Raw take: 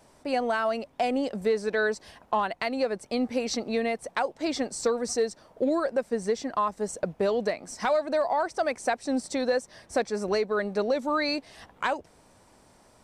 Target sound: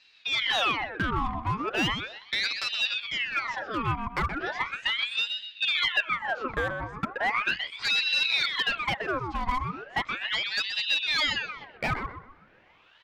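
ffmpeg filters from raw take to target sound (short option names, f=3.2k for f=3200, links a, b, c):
-filter_complex "[0:a]highpass=110,equalizer=f=210:t=q:w=4:g=-4,equalizer=f=370:t=q:w=4:g=-9,equalizer=f=560:t=q:w=4:g=8,equalizer=f=1.5k:t=q:w=4:g=9,lowpass=f=3.2k:w=0.5412,lowpass=f=3.2k:w=1.3066,asoftclip=type=hard:threshold=-20dB,bandreject=f=60:t=h:w=6,bandreject=f=120:t=h:w=6,bandreject=f=180:t=h:w=6,bandreject=f=240:t=h:w=6,bandreject=f=300:t=h:w=6,bandreject=f=360:t=h:w=6,bandreject=f=420:t=h:w=6,asplit=2[a][b];[b]adelay=126,lowpass=f=1.4k:p=1,volume=-4.5dB,asplit=2[c][d];[d]adelay=126,lowpass=f=1.4k:p=1,volume=0.42,asplit=2[e][f];[f]adelay=126,lowpass=f=1.4k:p=1,volume=0.42,asplit=2[g][h];[h]adelay=126,lowpass=f=1.4k:p=1,volume=0.42,asplit=2[i][j];[j]adelay=126,lowpass=f=1.4k:p=1,volume=0.42[k];[c][e][g][i][k]amix=inputs=5:normalize=0[l];[a][l]amix=inputs=2:normalize=0,aeval=exprs='val(0)*sin(2*PI*1900*n/s+1900*0.75/0.37*sin(2*PI*0.37*n/s))':c=same"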